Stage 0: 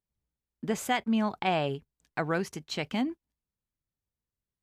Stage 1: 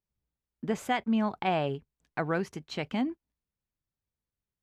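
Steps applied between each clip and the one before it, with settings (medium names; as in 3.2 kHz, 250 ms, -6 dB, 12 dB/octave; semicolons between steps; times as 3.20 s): treble shelf 4.2 kHz -10 dB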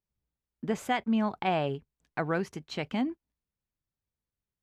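no audible change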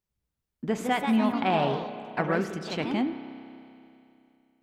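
spring tank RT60 2.9 s, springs 31 ms, chirp 65 ms, DRR 9.5 dB; ever faster or slower copies 235 ms, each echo +2 st, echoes 3, each echo -6 dB; trim +2 dB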